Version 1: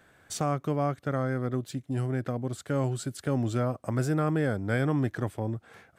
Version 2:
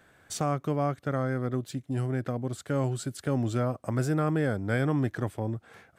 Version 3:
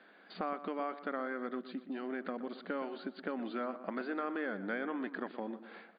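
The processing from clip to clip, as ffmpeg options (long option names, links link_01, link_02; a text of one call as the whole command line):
ffmpeg -i in.wav -af anull out.wav
ffmpeg -i in.wav -filter_complex "[0:a]afftfilt=real='re*between(b*sr/4096,180,4800)':imag='im*between(b*sr/4096,180,4800)':win_size=4096:overlap=0.75,acrossover=split=1100|2300[link_01][link_02][link_03];[link_01]acompressor=threshold=-38dB:ratio=4[link_04];[link_02]acompressor=threshold=-39dB:ratio=4[link_05];[link_03]acompressor=threshold=-59dB:ratio=4[link_06];[link_04][link_05][link_06]amix=inputs=3:normalize=0,asplit=2[link_07][link_08];[link_08]adelay=121,lowpass=frequency=2400:poles=1,volume=-12.5dB,asplit=2[link_09][link_10];[link_10]adelay=121,lowpass=frequency=2400:poles=1,volume=0.46,asplit=2[link_11][link_12];[link_12]adelay=121,lowpass=frequency=2400:poles=1,volume=0.46,asplit=2[link_13][link_14];[link_14]adelay=121,lowpass=frequency=2400:poles=1,volume=0.46,asplit=2[link_15][link_16];[link_16]adelay=121,lowpass=frequency=2400:poles=1,volume=0.46[link_17];[link_07][link_09][link_11][link_13][link_15][link_17]amix=inputs=6:normalize=0" out.wav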